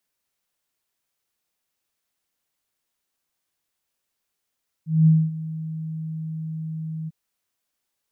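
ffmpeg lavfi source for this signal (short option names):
-f lavfi -i "aevalsrc='0.299*sin(2*PI*159*t)':d=2.247:s=44100,afade=t=in:d=0.207,afade=t=out:st=0.207:d=0.239:silence=0.141,afade=t=out:st=2.22:d=0.027"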